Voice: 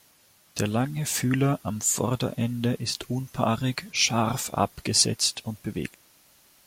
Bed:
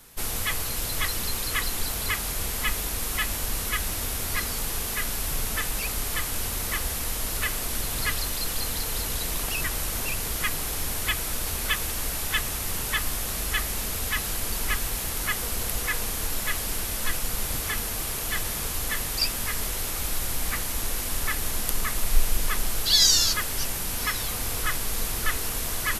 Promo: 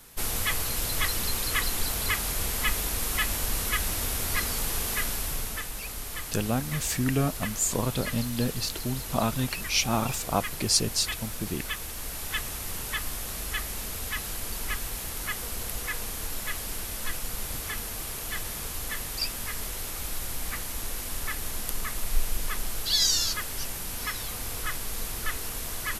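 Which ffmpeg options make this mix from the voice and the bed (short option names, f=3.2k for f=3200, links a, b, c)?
-filter_complex "[0:a]adelay=5750,volume=-2.5dB[a];[1:a]volume=2.5dB,afade=t=out:st=4.97:d=0.7:silence=0.421697,afade=t=in:st=11.91:d=0.47:silence=0.749894[b];[a][b]amix=inputs=2:normalize=0"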